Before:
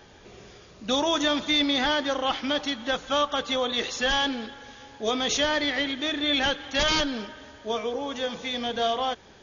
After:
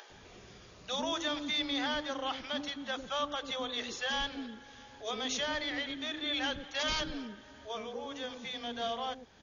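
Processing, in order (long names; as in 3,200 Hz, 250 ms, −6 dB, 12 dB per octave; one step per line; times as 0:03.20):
multiband delay without the direct sound highs, lows 100 ms, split 430 Hz
upward compression, threshold −37 dBFS
level −9 dB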